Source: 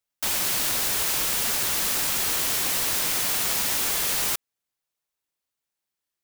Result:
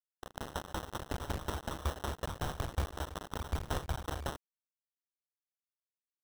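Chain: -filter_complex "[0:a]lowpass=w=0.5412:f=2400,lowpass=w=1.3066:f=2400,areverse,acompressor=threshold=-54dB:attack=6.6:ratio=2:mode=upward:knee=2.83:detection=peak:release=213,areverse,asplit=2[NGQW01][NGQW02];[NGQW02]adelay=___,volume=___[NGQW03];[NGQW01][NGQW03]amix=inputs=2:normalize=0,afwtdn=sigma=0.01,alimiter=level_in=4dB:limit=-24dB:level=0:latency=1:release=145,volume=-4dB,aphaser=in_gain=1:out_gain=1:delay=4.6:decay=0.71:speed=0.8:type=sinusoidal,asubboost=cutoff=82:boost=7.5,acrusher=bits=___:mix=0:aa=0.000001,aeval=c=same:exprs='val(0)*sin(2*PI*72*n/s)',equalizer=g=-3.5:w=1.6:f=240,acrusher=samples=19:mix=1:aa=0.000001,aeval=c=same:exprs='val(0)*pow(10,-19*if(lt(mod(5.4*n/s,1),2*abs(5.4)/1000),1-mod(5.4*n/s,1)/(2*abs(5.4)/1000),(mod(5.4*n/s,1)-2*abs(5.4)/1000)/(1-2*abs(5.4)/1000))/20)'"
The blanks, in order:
12, -3.5dB, 4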